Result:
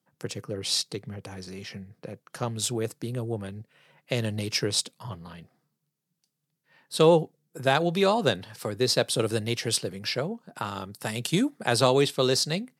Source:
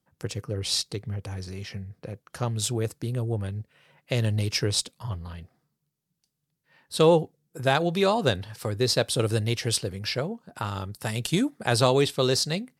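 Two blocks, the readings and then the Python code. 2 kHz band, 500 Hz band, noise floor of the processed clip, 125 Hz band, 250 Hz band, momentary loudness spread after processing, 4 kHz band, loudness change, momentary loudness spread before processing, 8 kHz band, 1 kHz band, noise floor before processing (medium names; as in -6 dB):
0.0 dB, 0.0 dB, -81 dBFS, -4.5 dB, 0.0 dB, 18 LU, 0.0 dB, 0.0 dB, 15 LU, 0.0 dB, 0.0 dB, -80 dBFS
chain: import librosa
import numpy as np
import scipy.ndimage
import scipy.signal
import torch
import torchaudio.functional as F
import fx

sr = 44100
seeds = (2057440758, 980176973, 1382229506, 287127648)

y = scipy.signal.sosfilt(scipy.signal.butter(4, 130.0, 'highpass', fs=sr, output='sos'), x)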